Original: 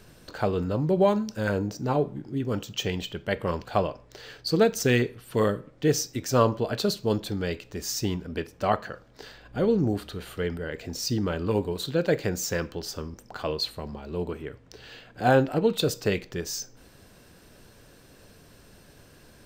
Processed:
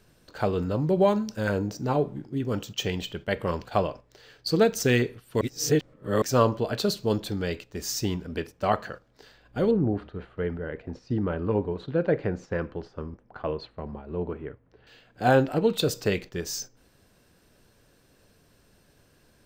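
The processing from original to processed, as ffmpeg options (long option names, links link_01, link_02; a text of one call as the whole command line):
ffmpeg -i in.wav -filter_complex "[0:a]asettb=1/sr,asplit=3[link_01][link_02][link_03];[link_01]atrim=end=9.714[link_04];[link_02]atrim=start=9.71:end=14.87,asetpts=PTS-STARTPTS,afade=type=in:duration=0.004:curve=qsin,afade=type=out:start_time=5.156:duration=0.004:curve=qsin,lowpass=1700[link_05];[link_03]atrim=start=14.866[link_06];[link_04][link_05]acrossfade=duration=0.004:curve1=hsin:curve2=qsin[link_07];[link_07][link_06]acrossfade=duration=0.004:curve1=qsin:curve2=hsin,asplit=3[link_08][link_09][link_10];[link_08]atrim=end=5.412[link_11];[link_09]atrim=start=5.408:end=6.222,asetpts=PTS-STARTPTS,areverse[link_12];[link_10]atrim=start=6.218[link_13];[link_11][link_12]acrossfade=duration=0.004:curve1=hsin:curve2=hsin[link_14];[link_14][link_13]acrossfade=duration=0.004:curve1=hsin:curve2=hsin,agate=range=-8dB:threshold=-39dB:ratio=16:detection=peak" out.wav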